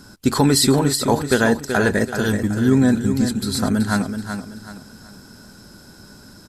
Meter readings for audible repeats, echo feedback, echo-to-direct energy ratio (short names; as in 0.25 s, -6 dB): 3, 35%, -7.5 dB